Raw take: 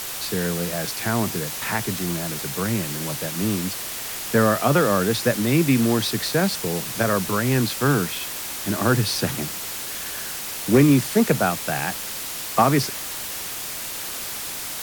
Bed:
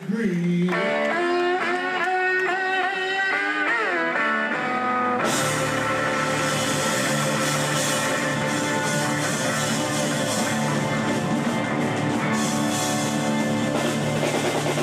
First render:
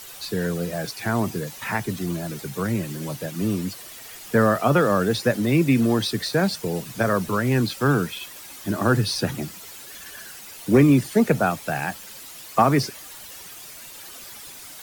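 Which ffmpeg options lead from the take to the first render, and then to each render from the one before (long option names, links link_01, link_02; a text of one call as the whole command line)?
ffmpeg -i in.wav -af "afftdn=noise_reduction=12:noise_floor=-31" out.wav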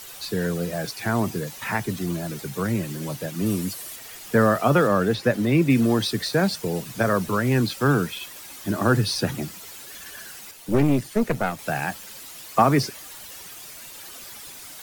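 ffmpeg -i in.wav -filter_complex "[0:a]asettb=1/sr,asplit=3[link_01][link_02][link_03];[link_01]atrim=end=3.464[link_04];[link_02]atrim=start=3.46:end=3.96,asetpts=PTS-STARTPTS,afade=type=in:duration=0.004:curve=qsin,afade=type=out:start_time=0.496:duration=0.004:curve=qsin,equalizer=frequency=11000:width_type=o:width=1.1:gain=7[link_05];[link_03]atrim=start=3.956[link_06];[link_04][link_05]acrossfade=duration=0.004:curve1=hsin:curve2=qsin[link_07];[link_07][link_06]acrossfade=duration=0.004:curve1=qsin:curve2=hsin,asettb=1/sr,asplit=3[link_08][link_09][link_10];[link_08]atrim=end=4.874[link_11];[link_09]atrim=start=4.87:end=5.7,asetpts=PTS-STARTPTS,afade=type=in:duration=0.004:curve=qsin,afade=type=out:start_time=0.826:duration=0.004:curve=qsin,acrossover=split=3900[link_12][link_13];[link_13]acompressor=threshold=-41dB:ratio=4:attack=1:release=60[link_14];[link_12][link_14]amix=inputs=2:normalize=0[link_15];[link_10]atrim=start=5.696[link_16];[link_11][link_15]acrossfade=duration=0.004:curve1=hsin:curve2=qsin[link_17];[link_17][link_16]acrossfade=duration=0.004:curve1=qsin:curve2=hsin,asettb=1/sr,asplit=3[link_18][link_19][link_20];[link_18]atrim=end=10.514[link_21];[link_19]atrim=start=10.51:end=11.59,asetpts=PTS-STARTPTS,afade=type=in:duration=0.004:curve=qsin,afade=type=out:start_time=1.076:duration=0.004:curve=qsin,aeval=exprs='(tanh(4.47*val(0)+0.8)-tanh(0.8))/4.47':channel_layout=same[link_22];[link_20]atrim=start=11.586[link_23];[link_21][link_22]acrossfade=duration=0.004:curve1=hsin:curve2=qsin[link_24];[link_24][link_23]acrossfade=duration=0.004:curve1=qsin:curve2=hsin" out.wav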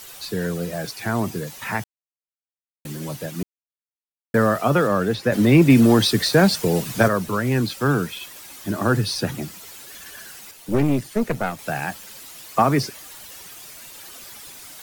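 ffmpeg -i in.wav -filter_complex "[0:a]asettb=1/sr,asplit=3[link_01][link_02][link_03];[link_01]atrim=end=5.324[link_04];[link_02]atrim=start=5.32:end=7.08,asetpts=PTS-STARTPTS,afade=type=in:duration=0.004:curve=qsin,afade=type=out:start_time=1.756:duration=0.004:curve=qsin,acontrast=69[link_05];[link_03]atrim=start=7.076[link_06];[link_04][link_05]acrossfade=duration=0.004:curve1=hsin:curve2=qsin[link_07];[link_07][link_06]acrossfade=duration=0.004:curve1=qsin:curve2=hsin,asplit=5[link_08][link_09][link_10][link_11][link_12];[link_08]atrim=end=1.84,asetpts=PTS-STARTPTS,afade=type=out:start_time=1.836:duration=0.004:curve=hsin[link_13];[link_09]atrim=start=1.84:end=2.85,asetpts=PTS-STARTPTS,volume=0[link_14];[link_10]atrim=start=2.85:end=3.43,asetpts=PTS-STARTPTS,afade=type=in:duration=0.004:curve=hsin,afade=type=out:start_time=0.576:duration=0.004:curve=hsin[link_15];[link_11]atrim=start=3.43:end=4.34,asetpts=PTS-STARTPTS,volume=0[link_16];[link_12]atrim=start=4.34,asetpts=PTS-STARTPTS,afade=type=in:duration=0.004:curve=hsin[link_17];[link_13][link_14][link_15][link_16][link_17]concat=n=5:v=0:a=1" out.wav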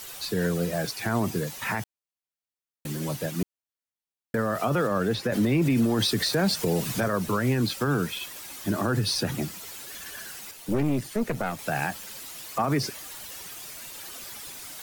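ffmpeg -i in.wav -af "alimiter=limit=-16dB:level=0:latency=1:release=79" out.wav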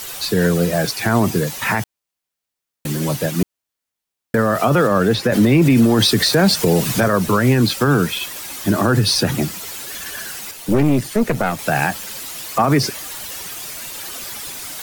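ffmpeg -i in.wav -af "volume=10dB" out.wav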